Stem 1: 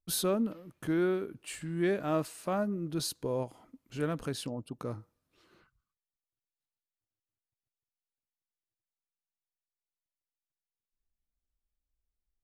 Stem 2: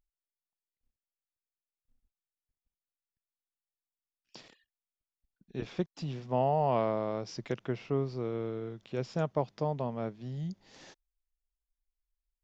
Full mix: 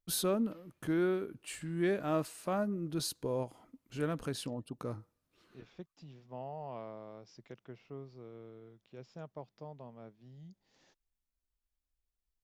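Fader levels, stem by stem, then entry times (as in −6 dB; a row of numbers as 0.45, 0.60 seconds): −2.0, −15.5 decibels; 0.00, 0.00 seconds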